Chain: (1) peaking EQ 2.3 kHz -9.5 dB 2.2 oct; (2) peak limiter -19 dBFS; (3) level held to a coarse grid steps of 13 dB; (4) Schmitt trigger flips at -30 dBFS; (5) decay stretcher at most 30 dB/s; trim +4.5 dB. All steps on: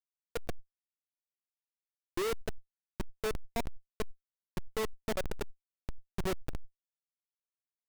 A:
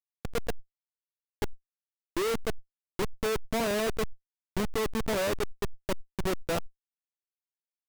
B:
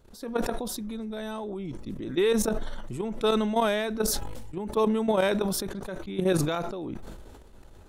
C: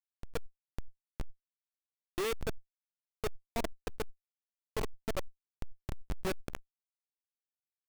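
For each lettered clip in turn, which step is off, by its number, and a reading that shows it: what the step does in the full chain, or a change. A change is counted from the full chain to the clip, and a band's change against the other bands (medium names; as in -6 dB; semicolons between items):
2, crest factor change -2.5 dB; 4, crest factor change +2.5 dB; 1, crest factor change +8.0 dB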